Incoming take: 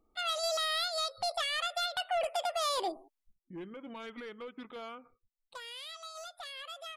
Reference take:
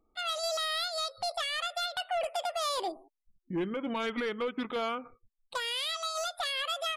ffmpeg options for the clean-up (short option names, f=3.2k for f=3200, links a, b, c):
-af "asetnsamples=n=441:p=0,asendcmd='3.33 volume volume 11.5dB',volume=0dB"